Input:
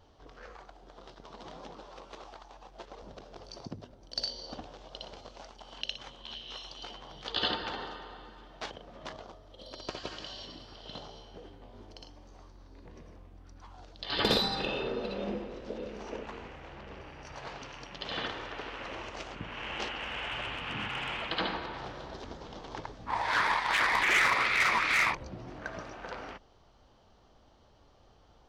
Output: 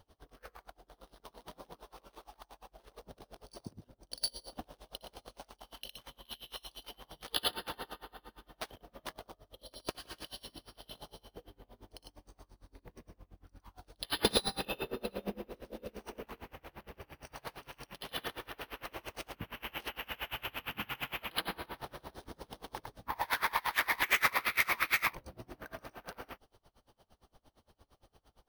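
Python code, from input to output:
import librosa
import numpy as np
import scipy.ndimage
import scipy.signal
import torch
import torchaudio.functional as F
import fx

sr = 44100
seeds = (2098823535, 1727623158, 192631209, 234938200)

y = fx.high_shelf(x, sr, hz=8500.0, db=12.0)
y = np.repeat(scipy.signal.resample_poly(y, 1, 3), 3)[:len(y)]
y = y * 10.0 ** (-28 * (0.5 - 0.5 * np.cos(2.0 * np.pi * 8.7 * np.arange(len(y)) / sr)) / 20.0)
y = F.gain(torch.from_numpy(y), 1.0).numpy()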